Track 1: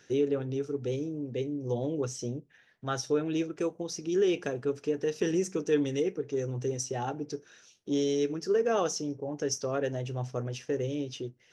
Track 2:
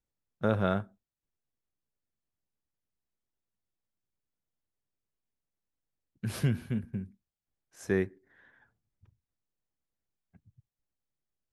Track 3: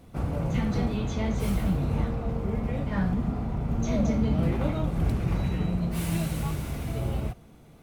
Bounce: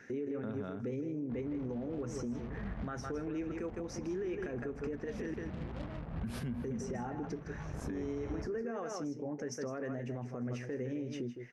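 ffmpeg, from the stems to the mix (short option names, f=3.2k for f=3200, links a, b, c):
-filter_complex "[0:a]highshelf=f=2.6k:t=q:w=3:g=-8,volume=2.5dB,asplit=3[a][b][c];[a]atrim=end=5.34,asetpts=PTS-STARTPTS,afade=t=out:st=5.336:d=0.004:c=hsin[d];[b]atrim=start=5.34:end=6.64,asetpts=PTS-STARTPTS,volume=0[e];[c]atrim=start=6.64,asetpts=PTS-STARTPTS,afade=t=in:d=0.004:c=hsin[f];[d][e][f]concat=n=3:v=0:a=1,asplit=2[g][h];[h]volume=-11dB[i];[1:a]highshelf=f=4.1k:g=-7.5,volume=-0.5dB[j];[2:a]lowpass=f=1.3k:w=0.5412,lowpass=f=1.3k:w=1.3066,acrusher=bits=4:mix=0:aa=0.5,adelay=1150,volume=-5dB,afade=t=in:st=7.65:d=0.32:silence=0.334965,asplit=2[k][l];[l]volume=-15.5dB[m];[g][j]amix=inputs=2:normalize=0,equalizer=f=240:w=5.6:g=14,acompressor=threshold=-24dB:ratio=6,volume=0dB[n];[i][m]amix=inputs=2:normalize=0,aecho=0:1:160:1[o];[k][n][o]amix=inputs=3:normalize=0,alimiter=level_in=6.5dB:limit=-24dB:level=0:latency=1:release=188,volume=-6.5dB"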